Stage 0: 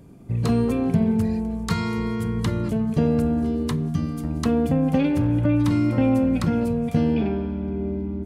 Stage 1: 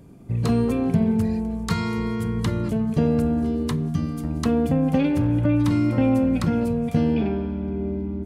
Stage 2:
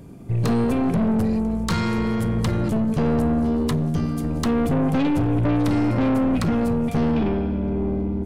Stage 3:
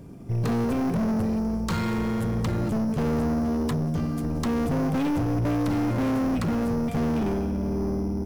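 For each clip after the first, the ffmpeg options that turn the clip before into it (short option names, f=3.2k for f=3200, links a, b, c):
-af anull
-af "aeval=exprs='(tanh(14.1*val(0)+0.3)-tanh(0.3))/14.1':c=same,volume=6dB"
-filter_complex "[0:a]asplit=2[a][b];[b]acrusher=samples=8:mix=1:aa=0.000001,volume=-7.5dB[c];[a][c]amix=inputs=2:normalize=0,asoftclip=type=tanh:threshold=-16dB,volume=-4.5dB"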